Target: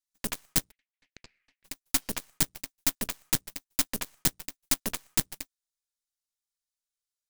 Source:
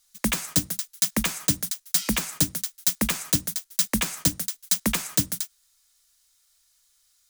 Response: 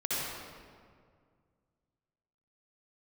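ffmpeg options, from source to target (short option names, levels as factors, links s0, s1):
-filter_complex "[0:a]asplit=3[s0][s1][s2];[s0]afade=t=out:st=0.7:d=0.02[s3];[s1]asuperpass=centerf=2200:order=4:qfactor=2.4,afade=t=in:st=0.7:d=0.02,afade=t=out:st=1.64:d=0.02[s4];[s2]afade=t=in:st=1.64:d=0.02[s5];[s3][s4][s5]amix=inputs=3:normalize=0,aeval=exprs='0.501*(cos(1*acos(clip(val(0)/0.501,-1,1)))-cos(1*PI/2))+0.251*(cos(2*acos(clip(val(0)/0.501,-1,1)))-cos(2*PI/2))+0.0891*(cos(3*acos(clip(val(0)/0.501,-1,1)))-cos(3*PI/2))+0.0178*(cos(5*acos(clip(val(0)/0.501,-1,1)))-cos(5*PI/2))+0.0501*(cos(7*acos(clip(val(0)/0.501,-1,1)))-cos(7*PI/2))':c=same,volume=0.75"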